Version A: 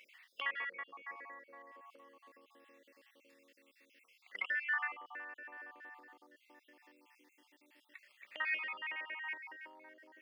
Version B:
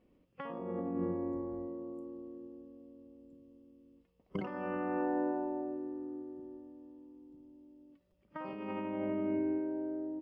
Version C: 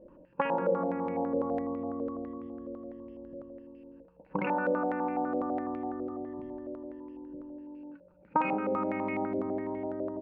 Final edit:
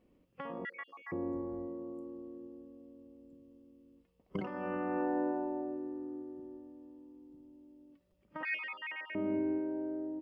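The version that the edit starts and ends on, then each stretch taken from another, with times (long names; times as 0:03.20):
B
0:00.65–0:01.12: punch in from A
0:08.43–0:09.15: punch in from A
not used: C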